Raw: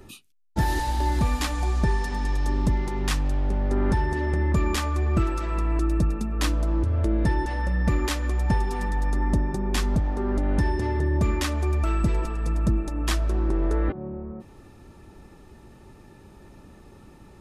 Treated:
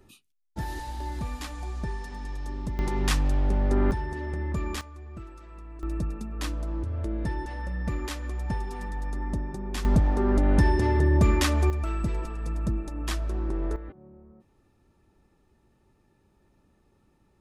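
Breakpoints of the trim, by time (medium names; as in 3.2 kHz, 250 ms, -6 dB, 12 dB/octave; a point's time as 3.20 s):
-10 dB
from 2.79 s +0.5 dB
from 3.91 s -7.5 dB
from 4.81 s -19 dB
from 5.83 s -7.5 dB
from 9.85 s +2.5 dB
from 11.70 s -5.5 dB
from 13.76 s -16.5 dB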